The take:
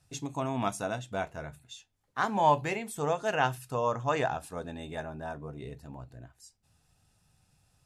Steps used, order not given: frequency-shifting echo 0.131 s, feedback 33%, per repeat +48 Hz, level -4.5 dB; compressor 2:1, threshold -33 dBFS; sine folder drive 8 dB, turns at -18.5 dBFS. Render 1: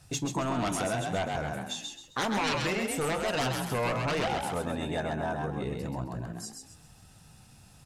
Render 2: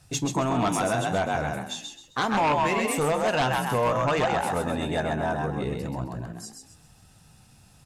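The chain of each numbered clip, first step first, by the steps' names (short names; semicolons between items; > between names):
sine folder > frequency-shifting echo > compressor; frequency-shifting echo > compressor > sine folder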